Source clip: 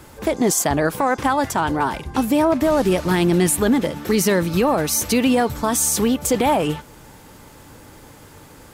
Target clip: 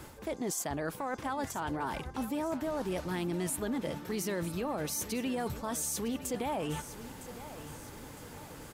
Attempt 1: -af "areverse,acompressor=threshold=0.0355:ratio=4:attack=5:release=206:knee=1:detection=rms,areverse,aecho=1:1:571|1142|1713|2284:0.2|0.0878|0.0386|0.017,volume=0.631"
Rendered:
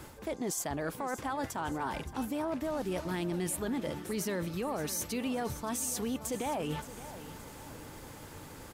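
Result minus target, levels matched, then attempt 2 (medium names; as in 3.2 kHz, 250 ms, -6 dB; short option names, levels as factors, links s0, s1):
echo 388 ms early
-af "areverse,acompressor=threshold=0.0355:ratio=4:attack=5:release=206:knee=1:detection=rms,areverse,aecho=1:1:959|1918|2877|3836:0.2|0.0878|0.0386|0.017,volume=0.631"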